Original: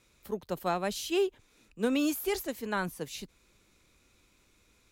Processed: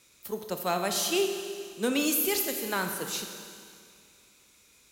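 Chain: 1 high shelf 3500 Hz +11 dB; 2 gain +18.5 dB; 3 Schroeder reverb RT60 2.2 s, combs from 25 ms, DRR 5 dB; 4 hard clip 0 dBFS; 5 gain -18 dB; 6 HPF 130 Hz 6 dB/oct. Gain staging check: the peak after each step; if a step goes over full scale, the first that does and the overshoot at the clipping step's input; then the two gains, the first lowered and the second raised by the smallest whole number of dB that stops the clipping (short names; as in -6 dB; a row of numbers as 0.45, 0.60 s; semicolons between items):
-16.0, +2.5, +4.0, 0.0, -18.0, -17.0 dBFS; step 2, 4.0 dB; step 2 +14.5 dB, step 5 -14 dB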